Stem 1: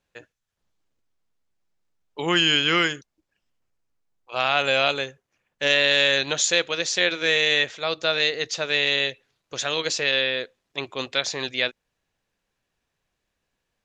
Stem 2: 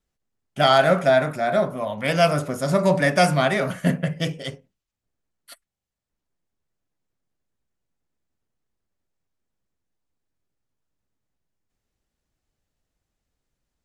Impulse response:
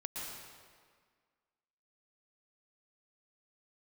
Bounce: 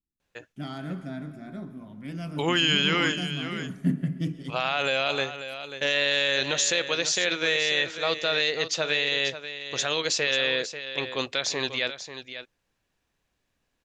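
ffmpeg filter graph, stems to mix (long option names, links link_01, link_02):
-filter_complex "[0:a]alimiter=limit=-13.5dB:level=0:latency=1:release=42,adelay=200,volume=0.5dB,asplit=2[link_01][link_02];[link_02]volume=-11dB[link_03];[1:a]lowshelf=frequency=410:width_type=q:width=3:gain=10,volume=-16.5dB,afade=type=in:start_time=3.49:duration=0.52:silence=0.446684,asplit=2[link_04][link_05];[link_05]volume=-10dB[link_06];[2:a]atrim=start_sample=2205[link_07];[link_06][link_07]afir=irnorm=-1:irlink=0[link_08];[link_03]aecho=0:1:540:1[link_09];[link_01][link_04][link_08][link_09]amix=inputs=4:normalize=0"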